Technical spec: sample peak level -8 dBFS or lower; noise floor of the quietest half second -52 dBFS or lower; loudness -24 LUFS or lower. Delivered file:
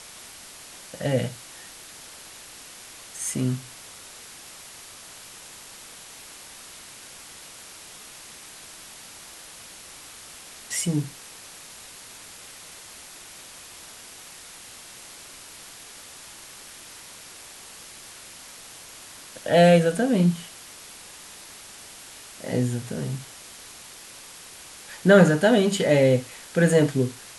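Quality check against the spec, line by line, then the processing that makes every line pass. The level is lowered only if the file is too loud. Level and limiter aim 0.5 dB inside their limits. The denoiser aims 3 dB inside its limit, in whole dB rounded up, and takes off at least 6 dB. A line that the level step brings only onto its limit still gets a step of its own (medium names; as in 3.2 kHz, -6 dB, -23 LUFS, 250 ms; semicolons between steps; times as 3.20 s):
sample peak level -4.5 dBFS: fail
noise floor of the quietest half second -44 dBFS: fail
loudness -22.0 LUFS: fail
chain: noise reduction 9 dB, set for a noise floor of -44 dBFS; trim -2.5 dB; peak limiter -8.5 dBFS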